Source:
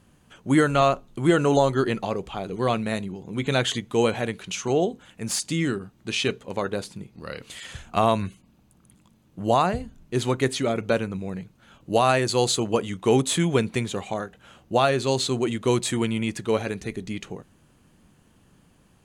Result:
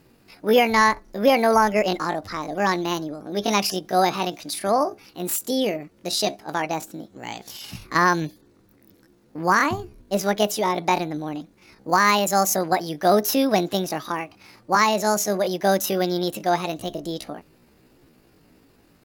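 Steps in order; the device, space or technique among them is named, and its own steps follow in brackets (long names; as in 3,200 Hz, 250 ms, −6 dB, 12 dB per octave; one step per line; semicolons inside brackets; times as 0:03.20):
chipmunk voice (pitch shifter +8 semitones)
level +2 dB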